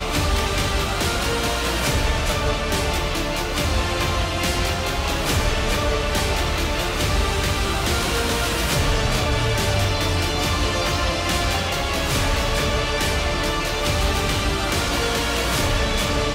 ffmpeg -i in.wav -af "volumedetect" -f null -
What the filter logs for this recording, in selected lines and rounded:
mean_volume: -21.2 dB
max_volume: -10.0 dB